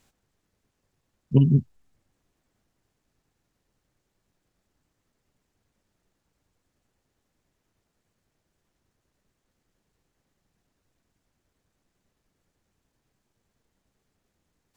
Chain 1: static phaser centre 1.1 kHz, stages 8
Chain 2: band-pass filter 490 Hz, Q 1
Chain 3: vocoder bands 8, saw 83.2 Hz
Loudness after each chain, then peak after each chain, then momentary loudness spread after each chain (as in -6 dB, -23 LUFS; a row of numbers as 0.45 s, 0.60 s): -27.5 LUFS, -29.5 LUFS, -22.5 LUFS; -11.5 dBFS, -11.0 dBFS, -7.0 dBFS; 4 LU, 5 LU, 5 LU